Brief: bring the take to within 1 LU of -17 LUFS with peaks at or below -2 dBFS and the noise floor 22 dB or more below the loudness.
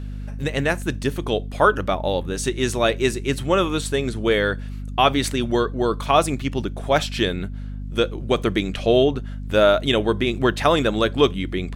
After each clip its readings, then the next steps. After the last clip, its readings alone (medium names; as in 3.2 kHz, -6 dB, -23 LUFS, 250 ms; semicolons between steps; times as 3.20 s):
hum 50 Hz; highest harmonic 250 Hz; hum level -28 dBFS; loudness -21.5 LUFS; peak level -3.0 dBFS; loudness target -17.0 LUFS
-> de-hum 50 Hz, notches 5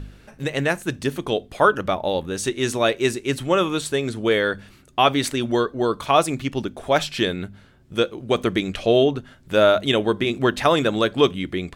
hum not found; loudness -21.5 LUFS; peak level -3.5 dBFS; loudness target -17.0 LUFS
-> trim +4.5 dB; peak limiter -2 dBFS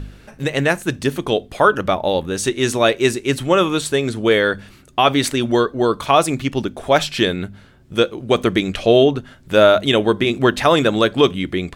loudness -17.5 LUFS; peak level -2.0 dBFS; noise floor -46 dBFS